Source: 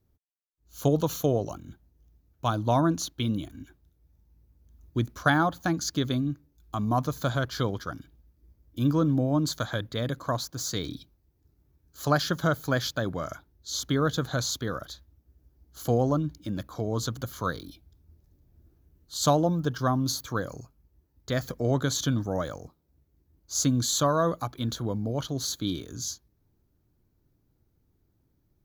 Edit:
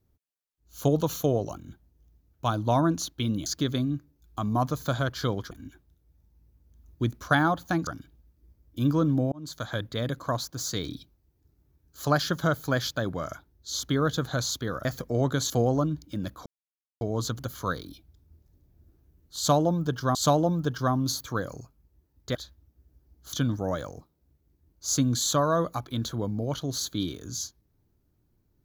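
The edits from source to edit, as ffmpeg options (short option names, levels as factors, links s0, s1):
-filter_complex "[0:a]asplit=11[s0][s1][s2][s3][s4][s5][s6][s7][s8][s9][s10];[s0]atrim=end=3.462[s11];[s1]atrim=start=5.818:end=7.872[s12];[s2]atrim=start=3.458:end=5.822[s13];[s3]atrim=start=7.868:end=9.32,asetpts=PTS-STARTPTS,afade=t=out:st=1.448:d=0.004:c=hsin[s14];[s4]atrim=start=9.32:end=14.852,asetpts=PTS-STARTPTS,afade=t=in:d=0.47[s15];[s5]atrim=start=21.348:end=22.002[s16];[s6]atrim=start=15.828:end=16.79,asetpts=PTS-STARTPTS,afade=t=out:st=0.958:d=0.004:c=hsin,apad=pad_dur=0.55[s17];[s7]atrim=start=16.79:end=19.932,asetpts=PTS-STARTPTS,afade=t=in:d=0.004:c=hsin[s18];[s8]atrim=start=19.148:end=21.352[s19];[s9]atrim=start=14.848:end=15.832[s20];[s10]atrim=start=21.998[s21];[s11][s12]acrossfade=d=0.004:c1=hsin:c2=hsin[s22];[s22][s13]acrossfade=d=0.004:c1=hsin:c2=hsin[s23];[s14][s15]concat=n=2:v=0:a=1[s24];[s23][s24]acrossfade=d=0.004:c1=hsin:c2=hsin[s25];[s25][s16]acrossfade=d=0.004:c1=hsin:c2=hsin[s26];[s17][s18]concat=n=2:v=0:a=1[s27];[s26][s27]acrossfade=d=0.004:c1=hsin:c2=hsin[s28];[s28][s19]acrossfade=d=0.004:c1=hsin:c2=hsin[s29];[s29][s20]acrossfade=d=0.004:c1=hsin:c2=hsin[s30];[s30][s21]acrossfade=d=0.004:c1=hsin:c2=hsin"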